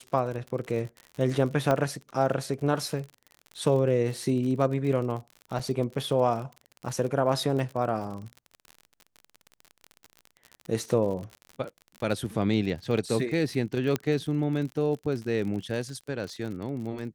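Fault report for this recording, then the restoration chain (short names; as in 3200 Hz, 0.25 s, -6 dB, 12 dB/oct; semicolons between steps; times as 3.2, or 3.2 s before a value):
crackle 46/s -34 dBFS
1.71 pop -13 dBFS
5.59–5.6 gap 5.8 ms
13.96 pop -13 dBFS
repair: de-click; interpolate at 5.59, 5.8 ms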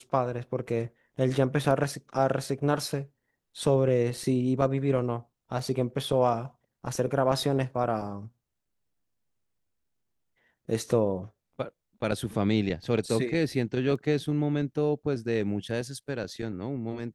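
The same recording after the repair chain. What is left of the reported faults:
1.71 pop
13.96 pop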